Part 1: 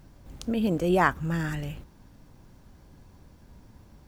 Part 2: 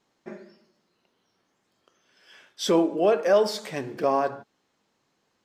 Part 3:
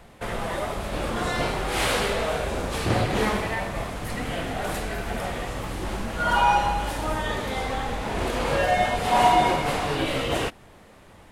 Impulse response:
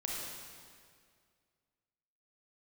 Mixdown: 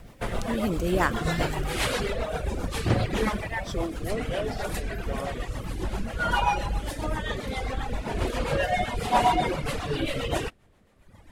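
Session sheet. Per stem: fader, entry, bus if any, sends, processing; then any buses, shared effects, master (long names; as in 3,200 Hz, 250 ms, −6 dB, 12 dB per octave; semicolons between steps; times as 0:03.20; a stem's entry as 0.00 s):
−1.0 dB, 0.00 s, no send, high-shelf EQ 5,000 Hz +10.5 dB
−10.0 dB, 1.05 s, no send, no processing
+1.0 dB, 0.00 s, no send, low-shelf EQ 120 Hz +6 dB; reverb reduction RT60 1.4 s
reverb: not used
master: rotating-speaker cabinet horn 7.5 Hz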